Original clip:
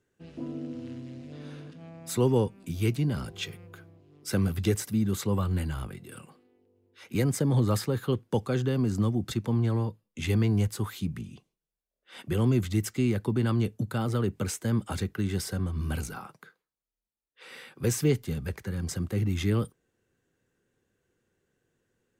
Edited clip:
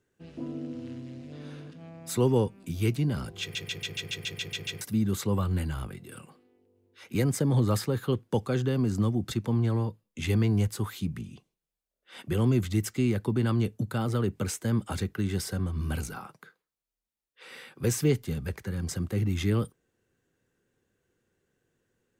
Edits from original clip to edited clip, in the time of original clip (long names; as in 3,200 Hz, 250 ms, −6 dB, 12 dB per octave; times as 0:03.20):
0:03.41: stutter in place 0.14 s, 10 plays